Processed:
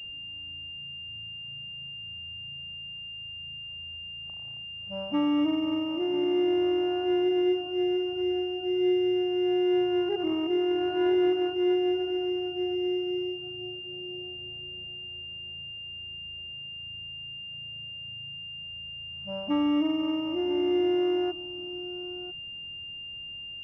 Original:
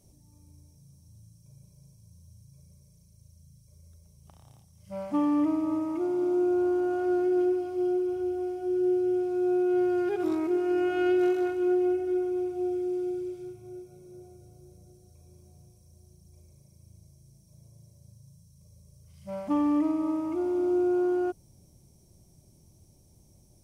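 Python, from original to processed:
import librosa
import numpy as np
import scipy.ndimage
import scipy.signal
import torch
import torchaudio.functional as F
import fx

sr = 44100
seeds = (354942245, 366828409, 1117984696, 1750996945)

p1 = x + fx.echo_single(x, sr, ms=997, db=-14.5, dry=0)
y = fx.pwm(p1, sr, carrier_hz=2800.0)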